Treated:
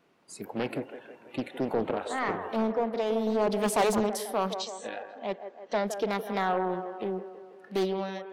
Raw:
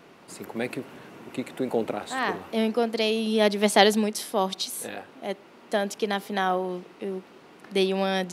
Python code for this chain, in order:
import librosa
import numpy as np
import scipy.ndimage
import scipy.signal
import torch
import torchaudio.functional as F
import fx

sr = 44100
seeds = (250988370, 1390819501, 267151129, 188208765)

p1 = fx.fade_out_tail(x, sr, length_s=0.66)
p2 = 10.0 ** (-18.5 / 20.0) * np.tanh(p1 / 10.0 ** (-18.5 / 20.0))
p3 = fx.steep_lowpass(p2, sr, hz=8100.0, slope=96, at=(4.57, 5.85))
p4 = fx.noise_reduce_blind(p3, sr, reduce_db=15)
p5 = fx.high_shelf(p4, sr, hz=2200.0, db=-12.0, at=(2.56, 3.52))
p6 = p5 + fx.echo_wet_bandpass(p5, sr, ms=163, feedback_pct=58, hz=770.0, wet_db=-8.0, dry=0)
p7 = fx.dynamic_eq(p6, sr, hz=4200.0, q=0.77, threshold_db=-45.0, ratio=4.0, max_db=-6)
y = fx.doppler_dist(p7, sr, depth_ms=0.54)